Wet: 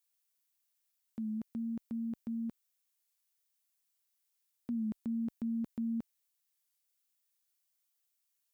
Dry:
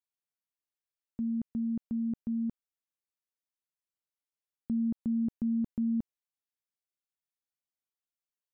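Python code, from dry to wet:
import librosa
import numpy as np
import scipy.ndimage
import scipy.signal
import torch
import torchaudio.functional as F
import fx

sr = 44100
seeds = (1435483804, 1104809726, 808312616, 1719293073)

y = fx.tilt_eq(x, sr, slope=3.5)
y = fx.record_warp(y, sr, rpm=33.33, depth_cents=100.0)
y = y * librosa.db_to_amplitude(2.0)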